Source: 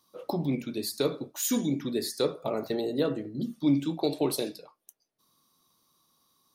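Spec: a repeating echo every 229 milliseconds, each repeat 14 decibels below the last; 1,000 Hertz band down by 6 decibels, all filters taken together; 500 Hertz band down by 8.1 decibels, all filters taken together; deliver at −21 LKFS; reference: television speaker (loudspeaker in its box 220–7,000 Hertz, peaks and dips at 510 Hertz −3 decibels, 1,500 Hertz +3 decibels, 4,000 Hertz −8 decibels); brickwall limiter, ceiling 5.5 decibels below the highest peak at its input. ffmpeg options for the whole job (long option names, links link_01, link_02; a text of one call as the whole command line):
ffmpeg -i in.wav -af "equalizer=frequency=500:width_type=o:gain=-7.5,equalizer=frequency=1000:width_type=o:gain=-5.5,alimiter=limit=-22.5dB:level=0:latency=1,highpass=frequency=220:width=0.5412,highpass=frequency=220:width=1.3066,equalizer=frequency=510:width_type=q:width=4:gain=-3,equalizer=frequency=1500:width_type=q:width=4:gain=3,equalizer=frequency=4000:width_type=q:width=4:gain=-8,lowpass=frequency=7000:width=0.5412,lowpass=frequency=7000:width=1.3066,aecho=1:1:229|458:0.2|0.0399,volume=15.5dB" out.wav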